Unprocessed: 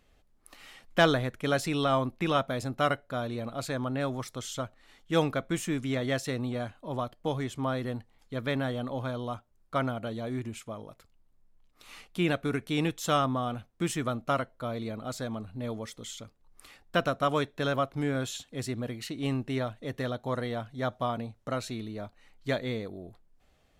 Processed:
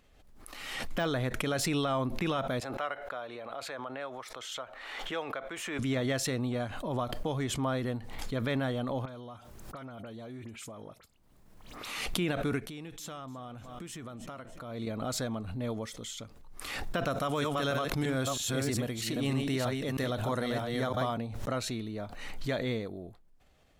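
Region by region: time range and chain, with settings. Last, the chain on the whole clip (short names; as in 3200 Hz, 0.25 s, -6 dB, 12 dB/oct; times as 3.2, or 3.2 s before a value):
2.6–5.79 three-band isolator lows -21 dB, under 440 Hz, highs -12 dB, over 3400 Hz + compressor 1.5:1, threshold -42 dBFS
9.05–12.06 HPF 80 Hz 6 dB/oct + compressor 12:1, threshold -40 dBFS + dispersion highs, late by 43 ms, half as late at 2900 Hz
12.68–14.87 compressor 4:1, threshold -43 dBFS + feedback echo 0.299 s, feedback 38%, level -19.5 dB
17.1–21.14 reverse delay 0.319 s, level -4 dB + high shelf 4700 Hz +8.5 dB
whole clip: de-esser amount 70%; limiter -22 dBFS; backwards sustainer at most 37 dB/s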